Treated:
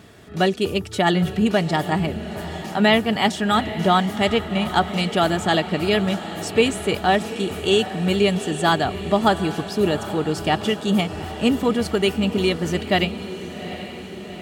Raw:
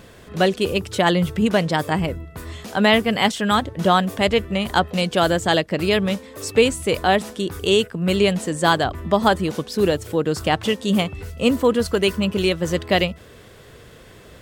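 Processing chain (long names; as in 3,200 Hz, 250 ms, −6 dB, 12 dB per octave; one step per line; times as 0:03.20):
high-pass filter 59 Hz
high-shelf EQ 10,000 Hz −4 dB
notch comb filter 520 Hz
feedback delay with all-pass diffusion 794 ms, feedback 62%, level −12.5 dB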